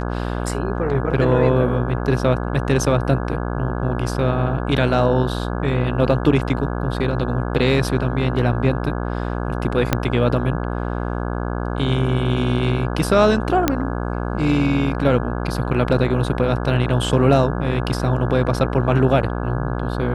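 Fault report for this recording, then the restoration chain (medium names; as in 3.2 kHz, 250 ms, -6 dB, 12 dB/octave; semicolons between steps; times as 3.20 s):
buzz 60 Hz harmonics 28 -24 dBFS
9.93 s: pop -2 dBFS
13.68 s: pop -2 dBFS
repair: de-click; de-hum 60 Hz, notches 28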